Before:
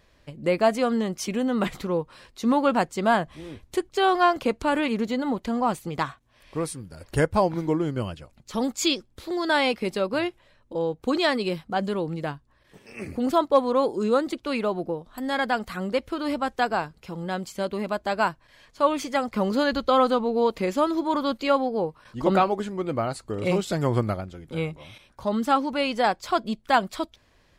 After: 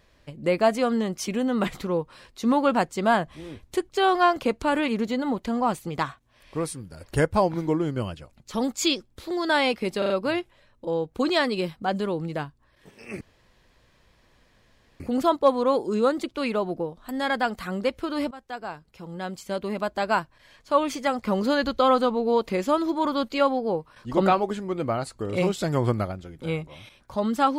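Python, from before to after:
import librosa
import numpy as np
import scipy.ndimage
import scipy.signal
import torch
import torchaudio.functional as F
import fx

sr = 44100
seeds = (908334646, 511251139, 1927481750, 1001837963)

y = fx.edit(x, sr, fx.stutter(start_s=9.98, slice_s=0.04, count=4),
    fx.insert_room_tone(at_s=13.09, length_s=1.79),
    fx.fade_in_from(start_s=16.4, length_s=1.48, floor_db=-17.5), tone=tone)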